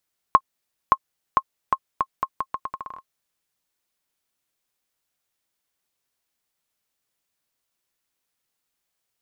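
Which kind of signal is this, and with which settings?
bouncing ball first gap 0.57 s, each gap 0.79, 1070 Hz, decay 56 ms -1.5 dBFS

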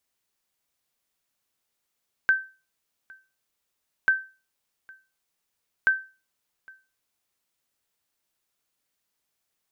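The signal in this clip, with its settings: sonar ping 1550 Hz, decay 0.32 s, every 1.79 s, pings 3, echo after 0.81 s, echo -27 dB -12.5 dBFS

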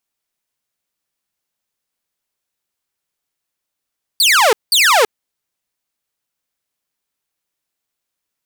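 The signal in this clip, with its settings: burst of laser zaps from 4800 Hz, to 400 Hz, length 0.33 s saw, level -6 dB, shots 2, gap 0.19 s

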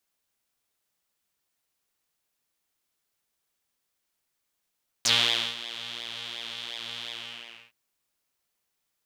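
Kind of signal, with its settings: synth patch with pulse-width modulation A#2, oscillator 2 saw, noise -18 dB, filter bandpass, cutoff 2600 Hz, Q 4.9, filter envelope 1.5 oct, filter decay 0.05 s, filter sustain 25%, attack 3.9 ms, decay 0.49 s, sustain -17.5 dB, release 0.63 s, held 2.04 s, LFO 2.8 Hz, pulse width 22%, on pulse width 14%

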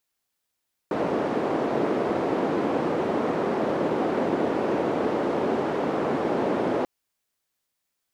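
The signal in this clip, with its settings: noise band 310–410 Hz, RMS -25 dBFS 5.94 s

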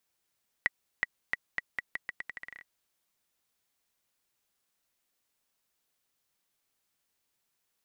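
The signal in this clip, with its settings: bouncing ball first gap 0.37 s, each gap 0.82, 1940 Hz, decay 26 ms -12 dBFS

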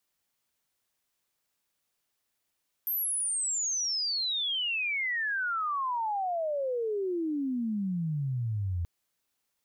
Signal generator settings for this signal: chirp logarithmic 13000 Hz -> 83 Hz -27.5 dBFS -> -28 dBFS 5.98 s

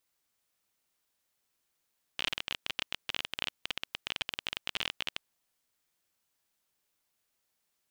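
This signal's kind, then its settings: random clicks 25/s -15 dBFS 3.09 s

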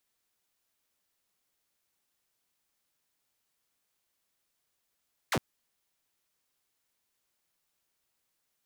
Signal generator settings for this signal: laser zap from 2400 Hz, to 83 Hz, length 0.06 s saw, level -23 dB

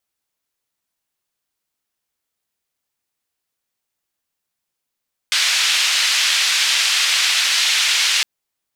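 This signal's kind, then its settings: noise band 2300–4100 Hz, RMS -17 dBFS 2.91 s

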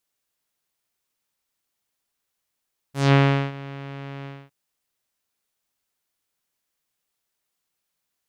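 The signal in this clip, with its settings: synth note saw C#3 12 dB/oct, low-pass 2700 Hz, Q 1.4, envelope 2.5 oct, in 0.18 s, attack 0.184 s, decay 0.39 s, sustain -21 dB, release 0.25 s, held 1.31 s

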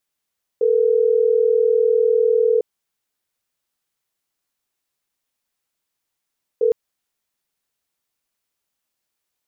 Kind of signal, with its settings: call progress tone ringback tone, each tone -16 dBFS 6.11 s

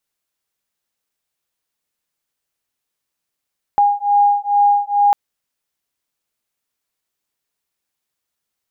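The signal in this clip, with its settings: beating tones 815 Hz, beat 2.3 Hz, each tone -14.5 dBFS 1.35 s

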